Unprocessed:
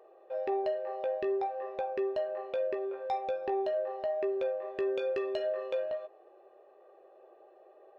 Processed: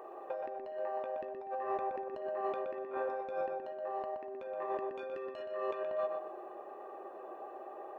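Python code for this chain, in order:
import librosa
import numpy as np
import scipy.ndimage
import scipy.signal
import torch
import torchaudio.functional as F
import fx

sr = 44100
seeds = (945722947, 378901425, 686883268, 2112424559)

y = fx.graphic_eq(x, sr, hz=(250, 500, 1000, 4000), db=(10, -8, 8, -6))
y = fx.over_compress(y, sr, threshold_db=-43.0, ratio=-1.0)
y = fx.echo_filtered(y, sr, ms=122, feedback_pct=41, hz=2800.0, wet_db=-4.0)
y = y * 10.0 ** (2.0 / 20.0)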